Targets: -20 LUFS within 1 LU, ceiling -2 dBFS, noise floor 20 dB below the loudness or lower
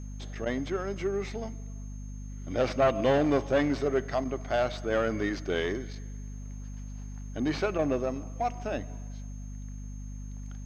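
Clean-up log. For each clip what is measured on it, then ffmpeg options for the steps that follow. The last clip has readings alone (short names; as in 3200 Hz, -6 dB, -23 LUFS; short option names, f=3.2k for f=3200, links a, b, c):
hum 50 Hz; harmonics up to 250 Hz; hum level -37 dBFS; steady tone 6400 Hz; tone level -56 dBFS; loudness -29.5 LUFS; peak -13.5 dBFS; loudness target -20.0 LUFS
-> -af "bandreject=f=50:t=h:w=6,bandreject=f=100:t=h:w=6,bandreject=f=150:t=h:w=6,bandreject=f=200:t=h:w=6,bandreject=f=250:t=h:w=6"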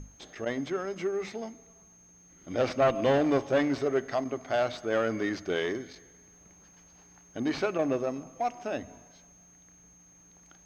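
hum none; steady tone 6400 Hz; tone level -56 dBFS
-> -af "bandreject=f=6.4k:w=30"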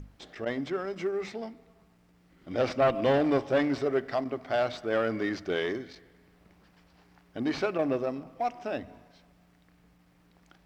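steady tone none; loudness -30.0 LUFS; peak -13.5 dBFS; loudness target -20.0 LUFS
-> -af "volume=10dB"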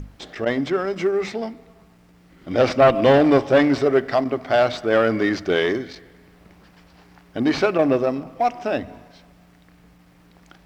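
loudness -20.0 LUFS; peak -3.5 dBFS; noise floor -53 dBFS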